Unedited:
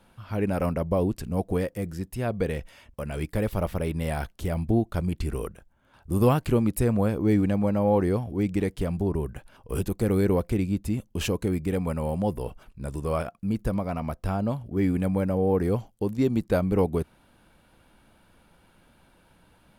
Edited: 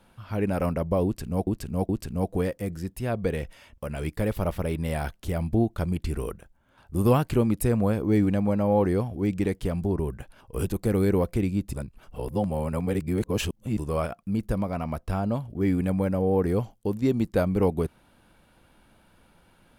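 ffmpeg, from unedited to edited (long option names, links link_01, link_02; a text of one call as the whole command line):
ffmpeg -i in.wav -filter_complex "[0:a]asplit=5[link_01][link_02][link_03][link_04][link_05];[link_01]atrim=end=1.472[link_06];[link_02]atrim=start=1.048:end=1.472[link_07];[link_03]atrim=start=1.048:end=10.892[link_08];[link_04]atrim=start=10.888:end=12.932,asetpts=PTS-STARTPTS,areverse[link_09];[link_05]atrim=start=12.928[link_10];[link_06][link_07]acrossfade=duration=0.004:curve1=hsin:curve2=hsin[link_11];[link_11][link_08]acrossfade=duration=0.004:curve1=hsin:curve2=hsin[link_12];[link_12][link_09]acrossfade=duration=0.004:curve1=hsin:curve2=hsin[link_13];[link_13][link_10]acrossfade=duration=0.004:curve1=hsin:curve2=hsin" out.wav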